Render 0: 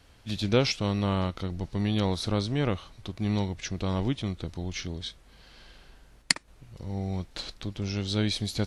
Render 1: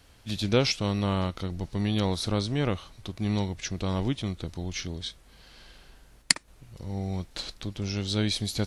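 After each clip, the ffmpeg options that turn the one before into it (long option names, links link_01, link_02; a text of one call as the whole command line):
ffmpeg -i in.wav -af "highshelf=frequency=7400:gain=7" out.wav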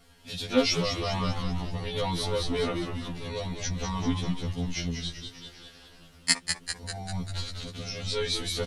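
ffmpeg -i in.wav -filter_complex "[0:a]aecho=1:1:4.3:0.73,asplit=9[link_01][link_02][link_03][link_04][link_05][link_06][link_07][link_08][link_09];[link_02]adelay=197,afreqshift=-95,volume=-6.5dB[link_10];[link_03]adelay=394,afreqshift=-190,volume=-10.8dB[link_11];[link_04]adelay=591,afreqshift=-285,volume=-15.1dB[link_12];[link_05]adelay=788,afreqshift=-380,volume=-19.4dB[link_13];[link_06]adelay=985,afreqshift=-475,volume=-23.7dB[link_14];[link_07]adelay=1182,afreqshift=-570,volume=-28dB[link_15];[link_08]adelay=1379,afreqshift=-665,volume=-32.3dB[link_16];[link_09]adelay=1576,afreqshift=-760,volume=-36.6dB[link_17];[link_01][link_10][link_11][link_12][link_13][link_14][link_15][link_16][link_17]amix=inputs=9:normalize=0,afftfilt=real='re*2*eq(mod(b,4),0)':imag='im*2*eq(mod(b,4),0)':win_size=2048:overlap=0.75" out.wav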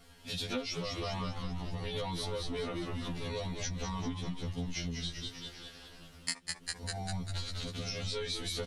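ffmpeg -i in.wav -af "acompressor=threshold=-33dB:ratio=10" out.wav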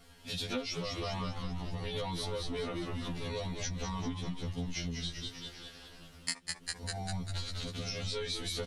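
ffmpeg -i in.wav -af anull out.wav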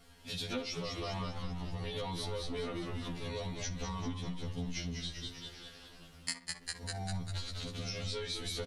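ffmpeg -i in.wav -filter_complex "[0:a]asplit=2[link_01][link_02];[link_02]adelay=62,lowpass=frequency=2400:poles=1,volume=-11.5dB,asplit=2[link_03][link_04];[link_04]adelay=62,lowpass=frequency=2400:poles=1,volume=0.45,asplit=2[link_05][link_06];[link_06]adelay=62,lowpass=frequency=2400:poles=1,volume=0.45,asplit=2[link_07][link_08];[link_08]adelay=62,lowpass=frequency=2400:poles=1,volume=0.45,asplit=2[link_09][link_10];[link_10]adelay=62,lowpass=frequency=2400:poles=1,volume=0.45[link_11];[link_01][link_03][link_05][link_07][link_09][link_11]amix=inputs=6:normalize=0,volume=-2dB" out.wav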